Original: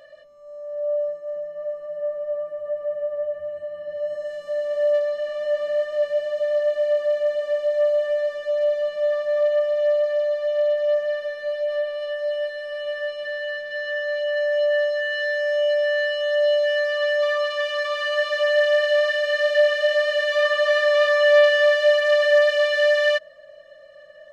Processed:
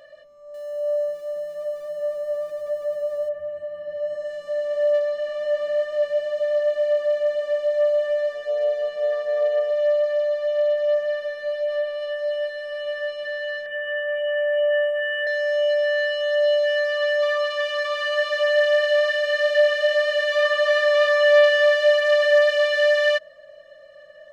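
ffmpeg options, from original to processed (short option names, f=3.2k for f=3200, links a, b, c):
-filter_complex "[0:a]asettb=1/sr,asplit=3[a][b][c];[a]atrim=end=0.544[d];[b]atrim=start=0.54:end=3.29,asetpts=PTS-STARTPTS,afade=t=in:d=0.004:c=qsin,afade=t=out:st=2.746:d=0.004:c=qsin,aeval=exprs='val(0)+0.5*0.00668*sgn(val(0))':c=same[e];[c]atrim=start=3.286[f];[d][e]acrossfade=d=0.004:c1=hsin:c2=qsin[g];[g][f]acrossfade=d=0.004:c1=qsin:c2=hsin,asettb=1/sr,asplit=3[h][i][j];[h]atrim=end=8.324[k];[i]atrim=start=8.32:end=9.71,asetpts=PTS-STARTPTS,afade=t=in:d=0.004:c=qsin,afade=t=out:st=1.386:d=0.004:c=qsin,tremolo=f=130:d=0.261[l];[j]atrim=start=9.706[m];[k][l]acrossfade=d=0.004:c1=hsin:c2=qsin[n];[n][m]acrossfade=d=0.004:c1=qsin:c2=hsin,asettb=1/sr,asplit=3[o][p][q];[o]atrim=end=13.664[r];[p]atrim=start=13.66:end=15.27,asetpts=PTS-STARTPTS,afade=t=in:d=0.004:c=qsin,afade=t=out:st=1.606:d=0.004:c=qsin,asuperstop=centerf=5200:order=20:qfactor=1.2[s];[q]atrim=start=15.266[t];[r][s]acrossfade=d=0.004:c1=hsin:c2=qsin[u];[u][t]acrossfade=d=0.004:c1=qsin:c2=hsin"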